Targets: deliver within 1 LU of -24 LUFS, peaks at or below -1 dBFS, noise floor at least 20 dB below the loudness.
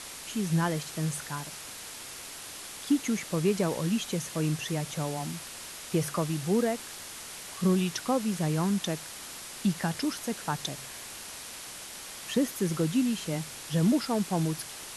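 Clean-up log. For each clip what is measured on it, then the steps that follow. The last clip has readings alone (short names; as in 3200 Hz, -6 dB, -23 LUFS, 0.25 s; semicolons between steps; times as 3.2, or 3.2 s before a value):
noise floor -43 dBFS; noise floor target -51 dBFS; loudness -31.0 LUFS; peak -15.0 dBFS; loudness target -24.0 LUFS
-> noise print and reduce 8 dB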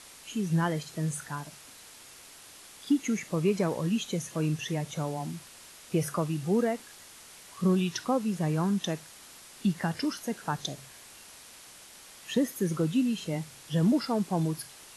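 noise floor -51 dBFS; loudness -30.0 LUFS; peak -15.5 dBFS; loudness target -24.0 LUFS
-> gain +6 dB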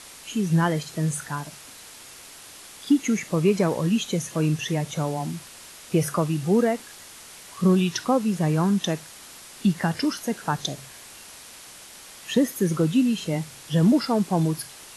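loudness -24.0 LUFS; peak -9.5 dBFS; noise floor -45 dBFS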